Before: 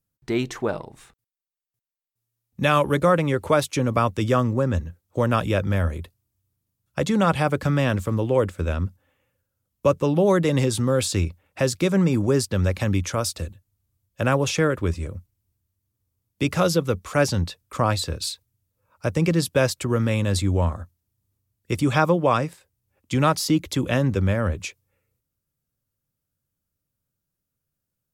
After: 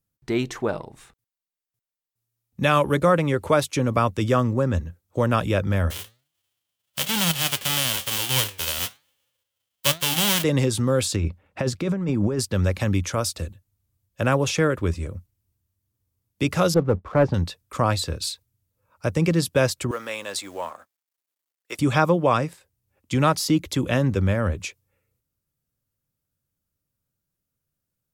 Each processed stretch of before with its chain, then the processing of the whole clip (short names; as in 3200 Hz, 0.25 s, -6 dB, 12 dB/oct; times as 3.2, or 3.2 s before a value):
5.9–10.42 spectral whitening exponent 0.1 + bell 3100 Hz +11.5 dB 0.37 oct + flange 1.1 Hz, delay 5.6 ms, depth 6 ms, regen +87%
11.16–12.39 LPF 2400 Hz 6 dB/oct + bell 210 Hz +4.5 dB 0.24 oct + negative-ratio compressor -23 dBFS
16.74–17.34 LPF 1100 Hz + sample leveller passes 1
19.91–21.79 G.711 law mismatch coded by A + HPF 650 Hz
whole clip: dry